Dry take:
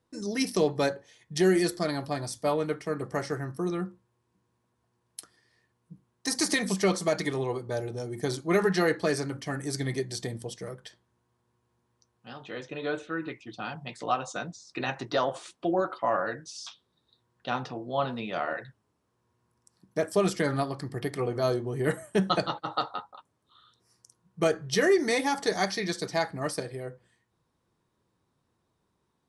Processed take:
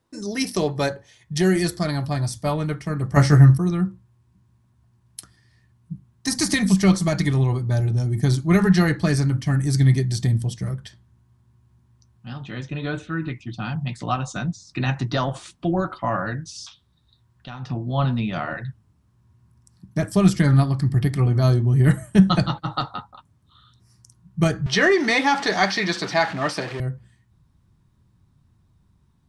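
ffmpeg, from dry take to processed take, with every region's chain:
-filter_complex "[0:a]asettb=1/sr,asplit=3[a][b][c];[a]atrim=end=3.164[d];[b]atrim=start=3.16:end=3.58,asetpts=PTS-STARTPTS,afade=t=in:d=0.004:c=qsin,afade=t=out:st=0.416:d=0.004:c=qsin,highpass=42,acontrast=83,asplit=2[e][f];[f]adelay=14,volume=-4dB[g];[e][g]amix=inputs=2:normalize=0,atrim=end_sample=18522[h];[c]atrim=start=3.576[i];[d][h]acrossfade=d=0.004:c1=hsin:c2=qsin[j];[j][i]acrossfade=d=0.004:c1=qsin:c2=hsin,asettb=1/sr,asplit=3[k][l][m];[k]atrim=end=16.654[n];[l]atrim=start=16.65:end=17.7,asetpts=PTS-STARTPTS,afade=t=in:d=0.004:c=qsin,afade=t=out:st=1.046:d=0.004:c=qsin,equalizer=f=190:w=0.64:g=-5.5,acompressor=threshold=-45dB:ratio=2:attack=3.2:release=140:knee=1:detection=peak[o];[m]atrim=start=17.696[p];[n][o]acrossfade=d=0.004:c1=hsin:c2=qsin[q];[q][p]acrossfade=d=0.004:c1=qsin:c2=hsin,asettb=1/sr,asplit=3[r][s][t];[r]atrim=end=24.664[u];[s]atrim=start=24.66:end=26.8,asetpts=PTS-STARTPTS,afade=t=in:d=0.004:c=qsin,afade=t=out:st=2.136:d=0.004:c=qsin,aeval=exprs='val(0)+0.5*0.015*sgn(val(0))':c=same,highpass=430,lowpass=4k,acontrast=51[v];[t]atrim=start=26.796[w];[u][v]acrossfade=d=0.004:c1=hsin:c2=qsin[x];[x][w]acrossfade=d=0.004:c1=qsin:c2=hsin,bandreject=f=480:w=12,asubboost=boost=10:cutoff=140,volume=4.5dB"

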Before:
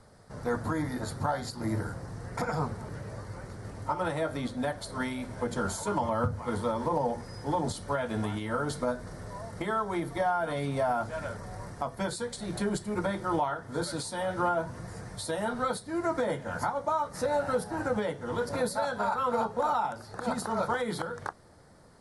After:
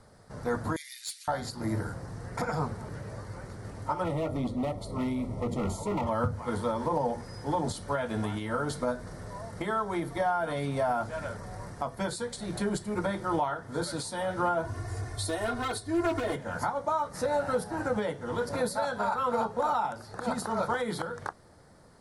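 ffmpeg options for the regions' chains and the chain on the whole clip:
-filter_complex "[0:a]asettb=1/sr,asplit=3[a][b][c];[a]atrim=end=0.764[d];[b]atrim=start=0.76:end=1.28,asetpts=PTS-STARTPTS,afade=t=in:d=0.004:c=qsin,afade=t=out:st=0.516:d=0.004:c=qsin,asuperpass=centerf=5900:order=12:qfactor=0.59,asoftclip=type=hard:threshold=-37dB,acontrast=75[e];[c]atrim=start=1.276[f];[d][e]acrossfade=d=0.004:c1=hsin:c2=qsin[g];[g][f]acrossfade=d=0.004:c1=qsin:c2=hsin,asettb=1/sr,asplit=3[h][i][j];[h]atrim=end=4.044[k];[i]atrim=start=4.04:end=6.07,asetpts=PTS-STARTPTS,afade=t=in:d=0.004:c=qsin,afade=t=out:st=2.026:d=0.004:c=qsin,tiltshelf=f=860:g=6.5,asoftclip=type=hard:threshold=-27dB,asuperstop=centerf=1600:order=12:qfactor=3.5[l];[j]atrim=start=6.066[m];[k][l]acrossfade=d=0.004:c1=hsin:c2=qsin[n];[n][m]acrossfade=d=0.004:c1=qsin:c2=hsin,asettb=1/sr,asplit=3[o][p][q];[o]atrim=end=14.644[r];[p]atrim=start=14.64:end=16.36,asetpts=PTS-STARTPTS,afade=t=in:d=0.004:c=qsin,afade=t=out:st=1.716:d=0.004:c=qsin,asoftclip=type=hard:threshold=-27.5dB,equalizer=f=96:w=4.7:g=13.5,aecho=1:1:2.8:0.88,atrim=end_sample=75852[s];[q]atrim=start=16.356[t];[r][s]acrossfade=d=0.004:c1=hsin:c2=qsin[u];[u][t]acrossfade=d=0.004:c1=qsin:c2=hsin"

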